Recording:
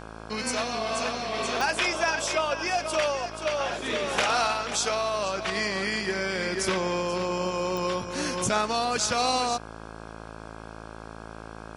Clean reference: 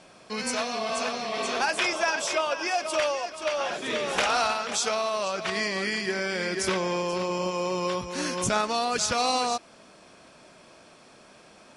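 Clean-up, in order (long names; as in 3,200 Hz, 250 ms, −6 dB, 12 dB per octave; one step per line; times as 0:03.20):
click removal
hum removal 54.9 Hz, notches 30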